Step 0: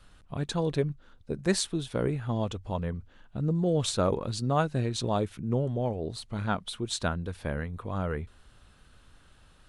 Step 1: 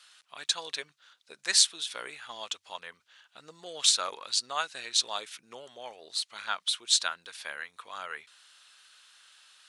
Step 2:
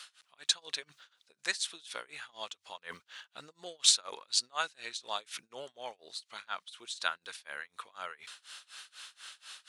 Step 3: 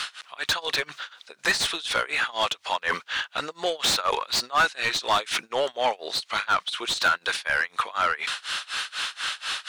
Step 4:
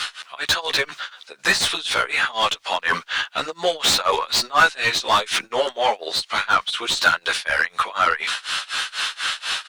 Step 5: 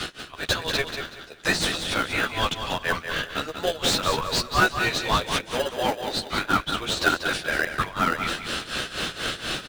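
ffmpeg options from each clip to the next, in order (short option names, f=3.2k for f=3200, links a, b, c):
-af "highpass=1.3k,equalizer=f=5.2k:t=o:w=2.4:g=10,volume=1dB"
-af "areverse,acompressor=mode=upward:threshold=-35dB:ratio=2.5,areverse,tremolo=f=4.1:d=0.96"
-filter_complex "[0:a]asplit=2[a][b];[b]highpass=f=720:p=1,volume=32dB,asoftclip=type=tanh:threshold=-9dB[c];[a][c]amix=inputs=2:normalize=0,lowpass=f=2.1k:p=1,volume=-6dB"
-filter_complex "[0:a]asplit=2[a][b];[b]adelay=11.8,afreqshift=-1.5[c];[a][c]amix=inputs=2:normalize=1,volume=8dB"
-filter_complex "[0:a]asplit=2[a][b];[b]acrusher=samples=40:mix=1:aa=0.000001,volume=-5dB[c];[a][c]amix=inputs=2:normalize=0,aecho=1:1:189|378|567:0.398|0.104|0.0269,volume=-6dB"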